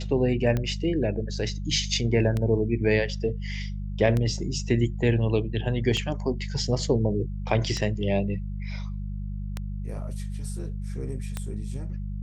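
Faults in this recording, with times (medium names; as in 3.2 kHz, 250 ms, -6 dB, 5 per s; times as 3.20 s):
hum 50 Hz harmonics 4 -32 dBFS
tick 33 1/3 rpm -15 dBFS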